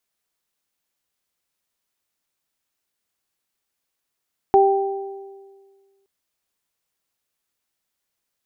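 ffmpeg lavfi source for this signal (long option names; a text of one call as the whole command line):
ffmpeg -f lavfi -i "aevalsrc='0.266*pow(10,-3*t/1.72)*sin(2*PI*392*t)+0.266*pow(10,-3*t/1.28)*sin(2*PI*784*t)':duration=1.52:sample_rate=44100" out.wav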